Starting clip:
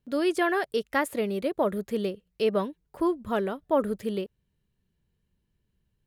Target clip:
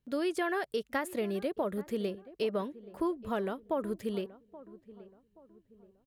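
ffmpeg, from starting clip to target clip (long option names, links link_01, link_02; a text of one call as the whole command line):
ffmpeg -i in.wav -filter_complex "[0:a]acompressor=threshold=-24dB:ratio=6,asplit=2[link_01][link_02];[link_02]adelay=827,lowpass=frequency=1100:poles=1,volume=-17dB,asplit=2[link_03][link_04];[link_04]adelay=827,lowpass=frequency=1100:poles=1,volume=0.42,asplit=2[link_05][link_06];[link_06]adelay=827,lowpass=frequency=1100:poles=1,volume=0.42,asplit=2[link_07][link_08];[link_08]adelay=827,lowpass=frequency=1100:poles=1,volume=0.42[link_09];[link_01][link_03][link_05][link_07][link_09]amix=inputs=5:normalize=0,volume=-3.5dB" out.wav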